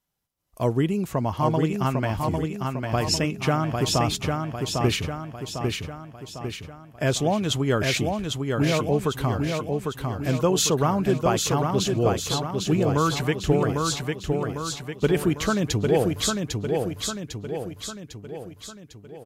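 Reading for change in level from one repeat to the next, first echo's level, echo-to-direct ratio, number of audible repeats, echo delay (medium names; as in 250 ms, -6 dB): -5.5 dB, -4.0 dB, -2.5 dB, 6, 801 ms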